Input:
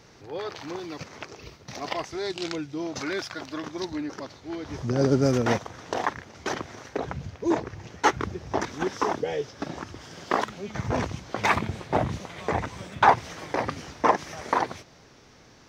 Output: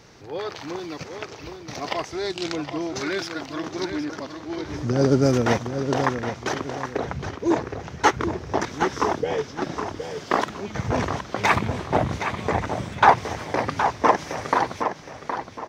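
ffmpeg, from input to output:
ffmpeg -i in.wav -filter_complex "[0:a]asplit=2[link_01][link_02];[link_02]adelay=767,lowpass=frequency=4600:poles=1,volume=-7.5dB,asplit=2[link_03][link_04];[link_04]adelay=767,lowpass=frequency=4600:poles=1,volume=0.32,asplit=2[link_05][link_06];[link_06]adelay=767,lowpass=frequency=4600:poles=1,volume=0.32,asplit=2[link_07][link_08];[link_08]adelay=767,lowpass=frequency=4600:poles=1,volume=0.32[link_09];[link_01][link_03][link_05][link_07][link_09]amix=inputs=5:normalize=0,volume=3dB" out.wav

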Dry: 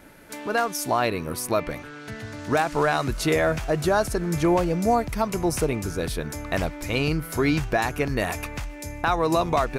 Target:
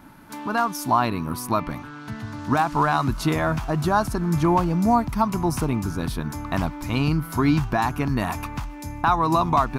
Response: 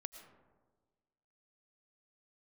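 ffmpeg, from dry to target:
-af "equalizer=frequency=125:width_type=o:width=1:gain=4,equalizer=frequency=250:width_type=o:width=1:gain=7,equalizer=frequency=500:width_type=o:width=1:gain=-12,equalizer=frequency=1000:width_type=o:width=1:gain=11,equalizer=frequency=2000:width_type=o:width=1:gain=-6,equalizer=frequency=8000:width_type=o:width=1:gain=-5"

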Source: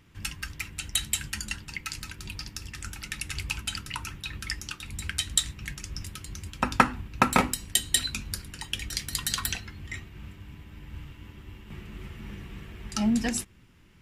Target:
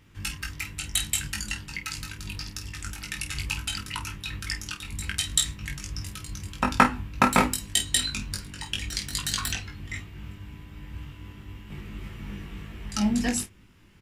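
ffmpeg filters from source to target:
ffmpeg -i in.wav -filter_complex "[0:a]asettb=1/sr,asplit=3[link_01][link_02][link_03];[link_01]atrim=end=7.714[link_04];[link_02]atrim=start=7.71:end=9.66,asetpts=PTS-STARTPTS,afade=type=in:duration=0.004:curve=qsin,afade=type=out:start_time=1.946:duration=0.004:curve=qsin,equalizer=frequency=12000:width=2.5:gain=-9[link_05];[link_03]atrim=start=9.656[link_06];[link_04][link_05]acrossfade=duration=0.004:curve1=hsin:curve2=qsin[link_07];[link_07][link_06]acrossfade=duration=0.004:curve1=qsin:curve2=hsin,aecho=1:1:20|49:0.668|0.299" out.wav

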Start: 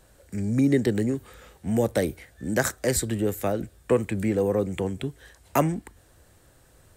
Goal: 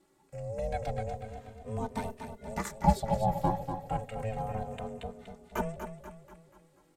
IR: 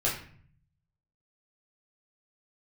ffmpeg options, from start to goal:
-filter_complex "[0:a]asettb=1/sr,asplit=3[link_01][link_02][link_03];[link_01]atrim=end=0.904[link_04];[link_02]atrim=start=0.9:end=1.91,asetpts=PTS-STARTPTS,afade=type=in:duration=0.004:curve=qsin,afade=type=out:start_time=1.006:duration=0.004:curve=qsin,acrossover=split=8700[link_05][link_06];[link_06]acompressor=threshold=-57dB:ratio=4:attack=1:release=60[link_07];[link_05][link_07]amix=inputs=2:normalize=0[link_08];[link_03]atrim=start=1.906[link_09];[link_04][link_08]acrossfade=duration=0.004:curve1=hsin:curve2=qsin[link_10];[link_10][link_09]acrossfade=duration=0.004:curve1=qsin:curve2=hsin,asettb=1/sr,asplit=3[link_11][link_12][link_13];[link_11]atrim=end=2.784[link_14];[link_12]atrim=start=2.78:end=3.5,asetpts=PTS-STARTPTS,afade=type=in:duration=0.004:curve=qsin,afade=type=out:start_time=0.716:duration=0.004:curve=qsin,equalizer=frequency=250:width_type=o:width=1:gain=7,equalizer=frequency=500:width_type=o:width=1:gain=12,equalizer=frequency=2000:width_type=o:width=1:gain=-7,equalizer=frequency=4000:width_type=o:width=1:gain=5,equalizer=frequency=8000:width_type=o:width=1:gain=-10[link_15];[link_13]atrim=start=3.496[link_16];[link_14][link_15]acrossfade=duration=0.004:curve1=hsin:curve2=qsin[link_17];[link_17][link_16]acrossfade=duration=0.004:curve1=qsin:curve2=hsin,aecho=1:1:242|484|726|968|1210|1452:0.398|0.191|0.0917|0.044|0.0211|0.0101,aeval=exprs='val(0)*sin(2*PI*330*n/s)':channel_layout=same,highshelf=frequency=12000:gain=-9,asplit=2[link_18][link_19];[link_19]adelay=3.1,afreqshift=-0.31[link_20];[link_18][link_20]amix=inputs=2:normalize=1,volume=-5.5dB"

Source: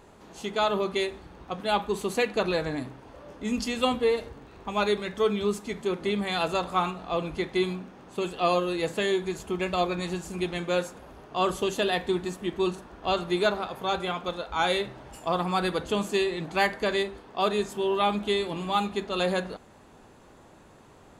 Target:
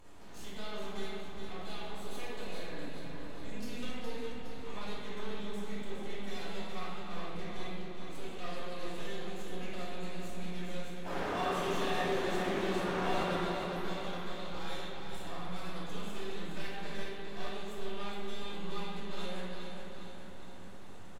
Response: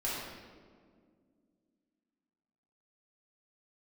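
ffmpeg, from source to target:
-filter_complex "[0:a]equalizer=frequency=550:width_type=o:width=2.9:gain=-6.5,acompressor=threshold=-47dB:ratio=3,aeval=exprs='max(val(0),0)':channel_layout=same,asettb=1/sr,asplit=3[link_01][link_02][link_03];[link_01]atrim=end=11.054[link_04];[link_02]atrim=start=11.05:end=13.35,asetpts=PTS-STARTPTS,afade=type=in:duration=0.004:curve=qsin,afade=type=out:start_time=2.296:duration=0.004:curve=qsin,asplit=2[link_05][link_06];[link_06]highpass=frequency=720:poles=1,volume=38dB,asoftclip=type=tanh:threshold=-30.5dB[link_07];[link_05][link_07]amix=inputs=2:normalize=0,lowpass=frequency=1600:poles=1,volume=-6dB[link_08];[link_03]atrim=start=13.346[link_09];[link_04][link_08]acrossfade=duration=0.004:curve1=hsin:curve2=qsin[link_10];[link_10][link_09]acrossfade=duration=0.004:curve1=qsin:curve2=hsin,aecho=1:1:414|828|1242|1656|2070|2484|2898:0.473|0.265|0.148|0.0831|0.0465|0.0261|0.0146[link_11];[1:a]atrim=start_sample=2205,asetrate=33957,aresample=44100[link_12];[link_11][link_12]afir=irnorm=-1:irlink=0,volume=-1.5dB"

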